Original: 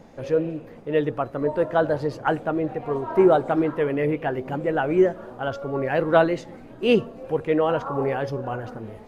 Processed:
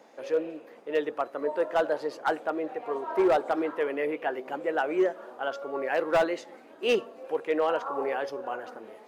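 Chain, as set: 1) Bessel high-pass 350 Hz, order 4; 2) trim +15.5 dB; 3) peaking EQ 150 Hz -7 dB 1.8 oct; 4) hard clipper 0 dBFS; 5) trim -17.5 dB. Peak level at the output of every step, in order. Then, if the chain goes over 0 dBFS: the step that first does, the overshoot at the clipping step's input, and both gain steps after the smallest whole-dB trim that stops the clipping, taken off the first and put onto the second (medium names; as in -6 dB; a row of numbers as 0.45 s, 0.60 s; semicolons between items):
-5.0 dBFS, +10.5 dBFS, +9.5 dBFS, 0.0 dBFS, -17.5 dBFS; step 2, 9.5 dB; step 2 +5.5 dB, step 5 -7.5 dB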